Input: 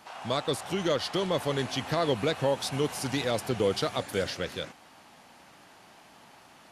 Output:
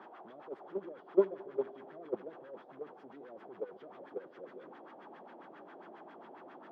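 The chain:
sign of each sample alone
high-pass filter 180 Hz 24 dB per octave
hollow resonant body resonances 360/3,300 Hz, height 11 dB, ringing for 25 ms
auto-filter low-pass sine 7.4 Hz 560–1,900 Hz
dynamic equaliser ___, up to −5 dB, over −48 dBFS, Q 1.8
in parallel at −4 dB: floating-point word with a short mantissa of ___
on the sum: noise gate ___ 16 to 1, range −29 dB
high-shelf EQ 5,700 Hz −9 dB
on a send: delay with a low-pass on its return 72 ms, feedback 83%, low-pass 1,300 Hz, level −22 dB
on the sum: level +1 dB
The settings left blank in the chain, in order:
2,100 Hz, 8 bits, −15 dBFS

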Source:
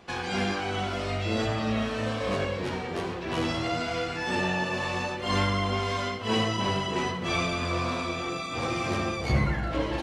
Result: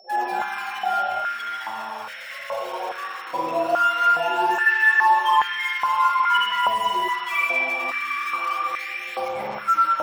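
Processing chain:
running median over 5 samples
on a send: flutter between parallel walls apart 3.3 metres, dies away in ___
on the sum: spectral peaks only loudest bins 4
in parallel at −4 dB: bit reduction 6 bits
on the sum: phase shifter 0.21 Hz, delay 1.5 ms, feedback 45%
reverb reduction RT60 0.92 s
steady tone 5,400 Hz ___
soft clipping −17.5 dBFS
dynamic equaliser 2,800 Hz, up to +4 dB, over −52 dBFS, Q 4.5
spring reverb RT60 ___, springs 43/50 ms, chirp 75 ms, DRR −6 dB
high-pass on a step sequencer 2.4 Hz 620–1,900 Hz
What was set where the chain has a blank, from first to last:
0.27 s, −51 dBFS, 2.5 s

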